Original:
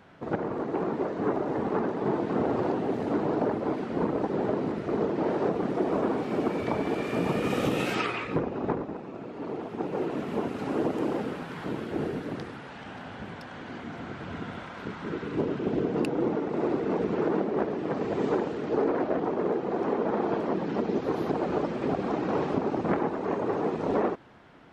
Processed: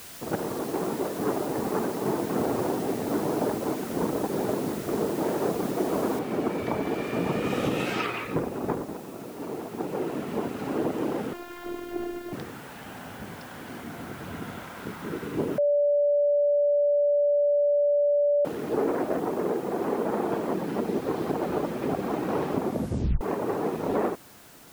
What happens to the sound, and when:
0:01.03–0:04.30: notch filter 3,200 Hz
0:06.19: noise floor change −44 dB −53 dB
0:11.33–0:12.33: phases set to zero 350 Hz
0:15.58–0:18.45: beep over 580 Hz −19 dBFS
0:22.63: tape stop 0.58 s

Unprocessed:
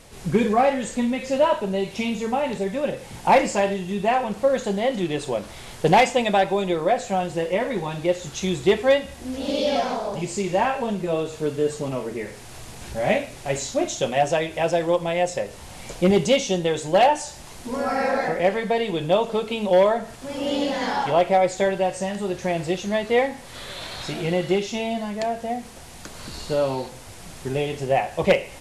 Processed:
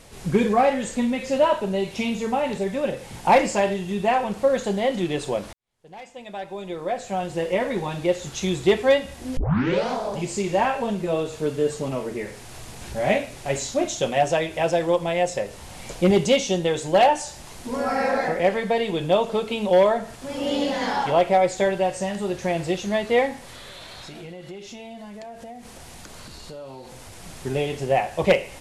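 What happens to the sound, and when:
0:05.53–0:07.50: fade in quadratic
0:09.37: tape start 0.53 s
0:23.37–0:27.24: downward compressor 5 to 1, threshold −37 dBFS

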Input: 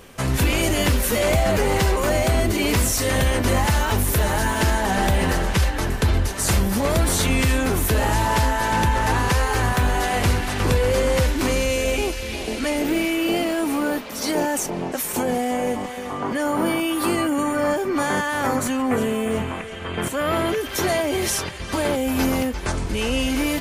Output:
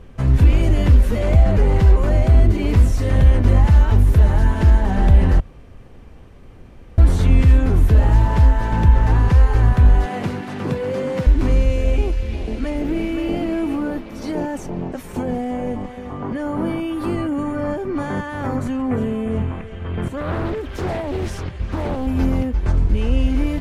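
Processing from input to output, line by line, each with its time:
0:05.40–0:06.98: fill with room tone
0:10.05–0:11.27: high-pass filter 150 Hz 24 dB per octave
0:12.44–0:13.23: delay throw 520 ms, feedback 30%, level −6.5 dB
0:20.17–0:22.07: highs frequency-modulated by the lows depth 0.61 ms
whole clip: RIAA equalisation playback; level −5.5 dB

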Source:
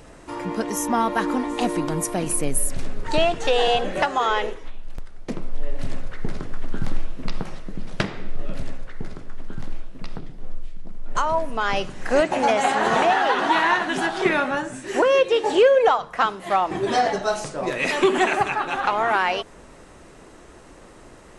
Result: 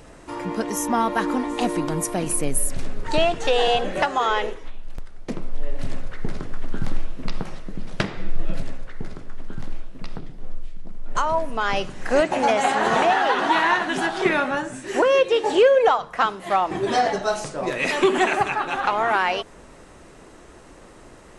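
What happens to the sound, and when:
0:08.17–0:08.61: comb filter 6 ms

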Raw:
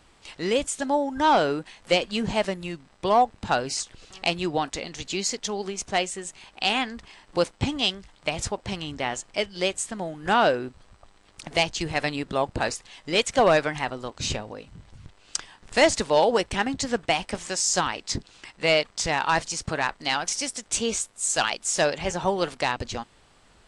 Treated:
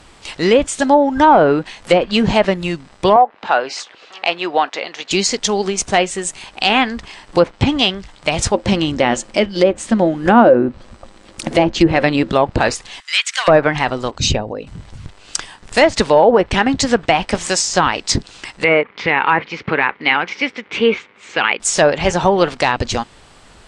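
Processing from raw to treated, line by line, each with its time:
0:03.16–0:05.11: band-pass filter 530–3,100 Hz
0:08.54–0:12.30: hollow resonant body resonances 230/330/530 Hz, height 12 dB, ringing for 95 ms
0:13.00–0:13.48: high-pass filter 1,400 Hz 24 dB per octave
0:14.11–0:14.67: spectral envelope exaggerated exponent 1.5
0:15.38–0:15.96: fade out, to −7.5 dB
0:18.64–0:21.60: loudspeaker in its box 180–3,000 Hz, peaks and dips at 440 Hz +4 dB, 660 Hz −9 dB, 2,200 Hz +8 dB
whole clip: treble cut that deepens with the level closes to 1,300 Hz, closed at −16.5 dBFS; dynamic equaliser 9,400 Hz, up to +6 dB, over −52 dBFS, Q 2; boost into a limiter +13.5 dB; level −1 dB

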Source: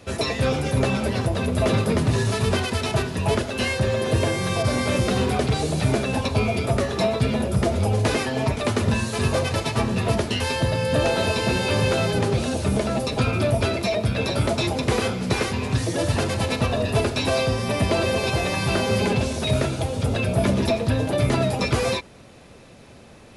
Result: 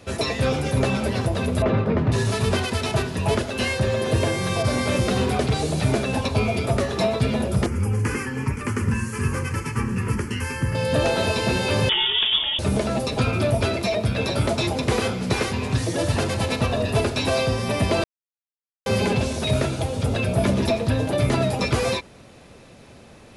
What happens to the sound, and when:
0:01.62–0:02.12: low-pass filter 2,000 Hz
0:07.66–0:10.75: phaser with its sweep stopped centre 1,600 Hz, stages 4
0:11.89–0:12.59: voice inversion scrambler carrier 3,500 Hz
0:18.04–0:18.86: silence

